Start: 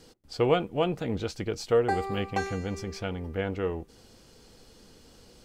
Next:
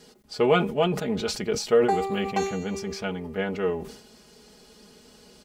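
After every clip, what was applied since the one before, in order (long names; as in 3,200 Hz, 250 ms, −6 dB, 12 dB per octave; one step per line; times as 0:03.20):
high-pass filter 120 Hz 6 dB per octave
comb filter 4.8 ms, depth 75%
level that may fall only so fast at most 84 dB per second
level +1.5 dB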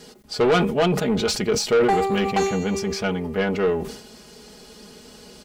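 soft clipping −21 dBFS, distortion −10 dB
level +7.5 dB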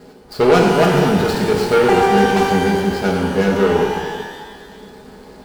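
running median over 15 samples
reverb with rising layers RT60 1.5 s, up +12 semitones, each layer −8 dB, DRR −0.5 dB
level +4 dB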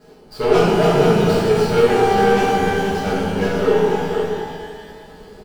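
on a send: single-tap delay 486 ms −6.5 dB
on the sum: rectangular room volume 71 cubic metres, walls mixed, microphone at 1.5 metres
level −10 dB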